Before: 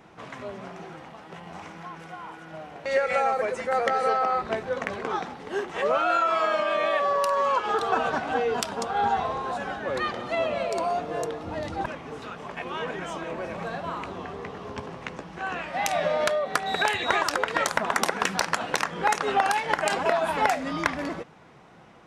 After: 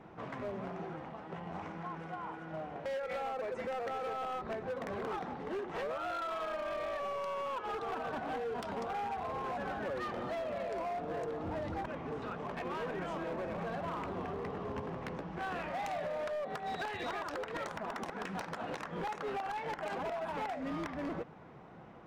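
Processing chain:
low-pass filter 1,100 Hz 6 dB per octave
downward compressor 16 to 1, threshold −32 dBFS, peak gain reduction 14 dB
hard clipping −34 dBFS, distortion −12 dB

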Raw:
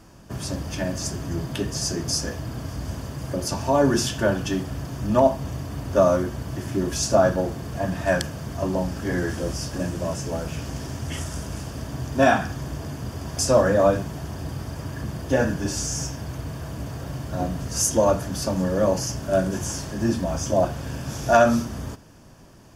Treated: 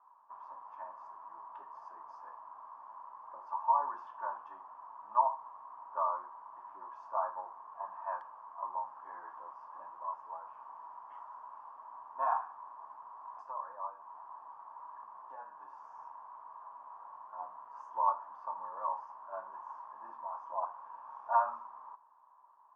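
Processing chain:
0:13.41–0:15.84: downward compressor 6 to 1, threshold −24 dBFS, peak gain reduction 11.5 dB
flat-topped band-pass 1,000 Hz, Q 4.4
level +1.5 dB

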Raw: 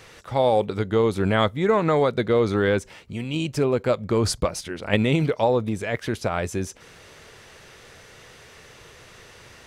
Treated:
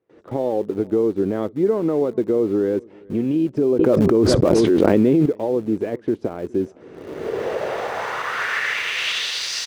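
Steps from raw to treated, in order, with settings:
camcorder AGC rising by 30 dB per second
noise gate with hold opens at −34 dBFS
on a send: single-tap delay 413 ms −23 dB
on the sum: band-pass filter sweep 330 Hz → 4,900 Hz, 0:07.15–0:09.52
in parallel at −11 dB: centre clipping without the shift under −35 dBFS
0:03.79–0:05.26: on the sum: envelope flattener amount 100%
level +3.5 dB

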